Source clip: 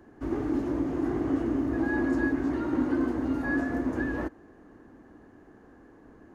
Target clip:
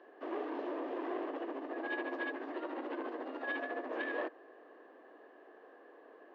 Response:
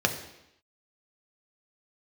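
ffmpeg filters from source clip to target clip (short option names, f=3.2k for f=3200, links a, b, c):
-filter_complex "[0:a]asplit=3[a][b][c];[a]afade=t=out:st=1.25:d=0.02[d];[b]tremolo=f=14:d=0.63,afade=t=in:st=1.25:d=0.02,afade=t=out:st=3.89:d=0.02[e];[c]afade=t=in:st=3.89:d=0.02[f];[d][e][f]amix=inputs=3:normalize=0,asoftclip=type=tanh:threshold=-27.5dB,highpass=f=480:w=0.5412,highpass=f=480:w=1.3066,equalizer=f=870:t=q:w=4:g=-8,equalizer=f=1.4k:t=q:w=4:g=-10,equalizer=f=2.2k:t=q:w=4:g=-7,lowpass=f=3.3k:w=0.5412,lowpass=f=3.3k:w=1.3066,volume=5.5dB"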